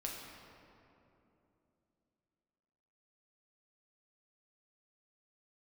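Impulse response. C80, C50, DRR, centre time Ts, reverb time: 2.5 dB, 1.0 dB, −2.0 dB, 107 ms, 3.0 s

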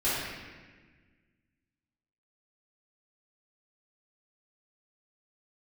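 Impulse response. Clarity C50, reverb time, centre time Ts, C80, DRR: −2.5 dB, 1.4 s, 112 ms, 0.5 dB, −12.5 dB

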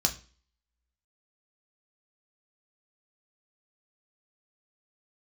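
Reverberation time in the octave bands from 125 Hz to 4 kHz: 0.40, 0.45, 0.40, 0.35, 0.40, 0.40 seconds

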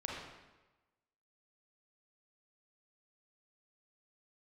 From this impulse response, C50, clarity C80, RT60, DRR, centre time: −0.5 dB, 2.5 dB, 1.1 s, −3.0 dB, 73 ms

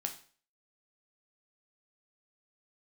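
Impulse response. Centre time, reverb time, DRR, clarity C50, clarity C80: 11 ms, 0.45 s, 3.5 dB, 11.0 dB, 15.5 dB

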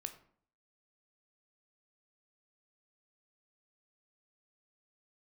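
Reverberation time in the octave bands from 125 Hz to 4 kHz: 0.65, 0.65, 0.55, 0.55, 0.45, 0.35 seconds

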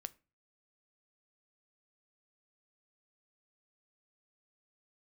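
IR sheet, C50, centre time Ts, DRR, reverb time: 23.5 dB, 2 ms, 14.0 dB, 0.35 s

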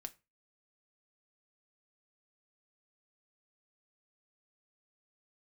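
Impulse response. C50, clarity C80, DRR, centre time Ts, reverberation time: 21.5 dB, 27.0 dB, 7.5 dB, 4 ms, 0.25 s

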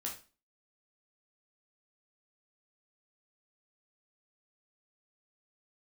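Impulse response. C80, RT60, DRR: 14.0 dB, 0.35 s, −2.0 dB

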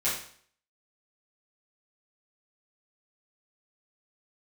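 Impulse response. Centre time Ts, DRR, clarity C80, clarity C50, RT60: 41 ms, −11.0 dB, 8.0 dB, 3.5 dB, 0.55 s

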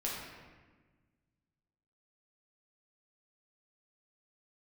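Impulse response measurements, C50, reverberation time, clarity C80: 0.0 dB, 1.4 s, 2.5 dB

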